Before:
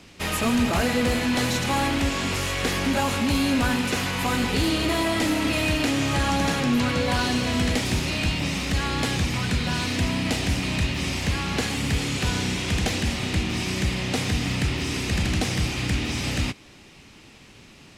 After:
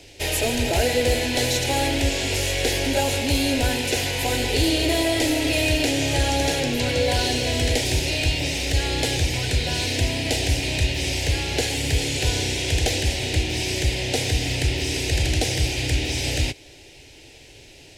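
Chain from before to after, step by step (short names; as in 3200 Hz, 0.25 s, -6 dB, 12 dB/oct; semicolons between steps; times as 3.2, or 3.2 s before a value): fixed phaser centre 490 Hz, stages 4; gain +5.5 dB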